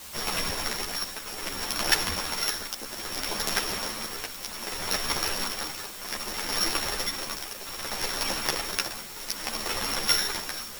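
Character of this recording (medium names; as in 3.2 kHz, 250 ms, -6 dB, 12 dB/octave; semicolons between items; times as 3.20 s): a buzz of ramps at a fixed pitch in blocks of 8 samples; tremolo triangle 0.63 Hz, depth 85%; a quantiser's noise floor 8-bit, dither triangular; a shimmering, thickened sound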